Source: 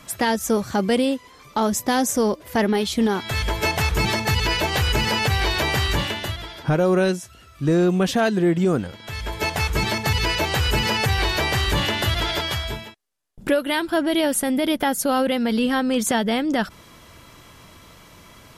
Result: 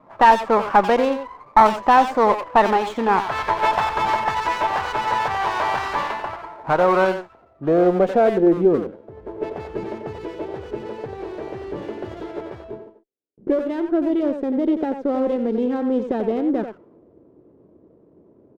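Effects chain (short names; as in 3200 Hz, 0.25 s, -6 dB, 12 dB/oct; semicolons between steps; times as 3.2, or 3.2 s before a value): low-pass opened by the level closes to 400 Hz, open at -15.5 dBFS; weighting filter ITU-R 468; added harmonics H 5 -25 dB, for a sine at -1.5 dBFS; vocal rider within 4 dB 2 s; low-pass sweep 990 Hz -> 390 Hz, 7–8.8; speakerphone echo 90 ms, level -7 dB; running maximum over 5 samples; gain +2 dB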